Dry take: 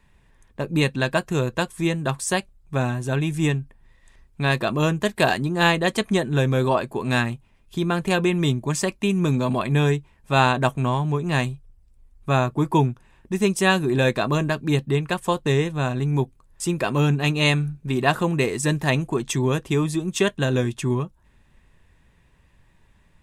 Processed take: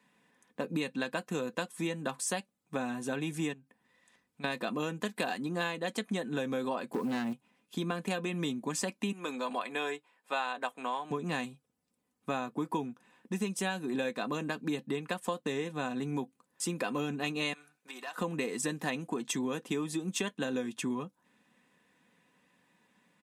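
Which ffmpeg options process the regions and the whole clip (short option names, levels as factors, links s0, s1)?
-filter_complex "[0:a]asettb=1/sr,asplit=3[s0][s1][s2];[s0]atrim=end=3.534[s3];[s1]atrim=start=3.53:end=4.44,asetpts=PTS-STARTPTS,afade=t=in:d=0.004:c=qsin,afade=t=out:st=0.906:d=0.004:c=qsin,asubboost=boost=8:cutoff=120,acompressor=threshold=0.00562:ratio=2:attack=3.2:release=140:knee=1:detection=peak[s4];[s2]atrim=start=4.436[s5];[s3][s4]acrossfade=d=0.004:c1=hsin:c2=qsin[s6];[s6][s5]acrossfade=d=0.004:c1=qsin:c2=hsin,asettb=1/sr,asplit=3[s7][s8][s9];[s7]atrim=end=6.934[s10];[s8]atrim=start=6.93:end=7.33,asetpts=PTS-STARTPTS,afade=t=in:d=0.004:c=qsin,afade=t=out:st=0.396:d=0.004:c=qsin,tiltshelf=f=1400:g=7.5,acrusher=bits=8:dc=4:mix=0:aa=0.000001,asoftclip=type=hard:threshold=0.158[s11];[s9]atrim=start=7.326[s12];[s10][s11]acrossfade=d=0.004:c1=hsin:c2=qsin[s13];[s13][s12]acrossfade=d=0.004:c1=qsin:c2=hsin,asettb=1/sr,asplit=3[s14][s15][s16];[s14]atrim=end=9.124[s17];[s15]atrim=start=9.12:end=11.11,asetpts=PTS-STARTPTS,afade=t=in:d=0.004:c=qsin,afade=t=out:st=1.986:d=0.004:c=qsin,highpass=540,highshelf=f=8200:g=-6,bandreject=f=6000:w=6.4[s18];[s16]atrim=start=11.106[s19];[s17][s18]acrossfade=d=0.004:c1=hsin:c2=qsin[s20];[s20][s19]acrossfade=d=0.004:c1=qsin:c2=hsin,asettb=1/sr,asplit=3[s21][s22][s23];[s21]atrim=end=17.534[s24];[s22]atrim=start=17.53:end=18.18,asetpts=PTS-STARTPTS,afade=t=in:d=0.004:c=qsin,afade=t=out:st=0.646:d=0.004:c=qsin,highpass=810,acompressor=threshold=0.0141:ratio=3:attack=3.2:release=140:knee=1:detection=peak,volume=29.9,asoftclip=hard,volume=0.0335[s25];[s23]atrim=start=18.176[s26];[s24][s25]acrossfade=d=0.004:c1=hsin:c2=qsin[s27];[s27][s26]acrossfade=d=0.004:c1=qsin:c2=hsin,highpass=f=170:w=0.5412,highpass=f=170:w=1.3066,aecho=1:1:4:0.48,acompressor=threshold=0.0562:ratio=6,volume=0.562"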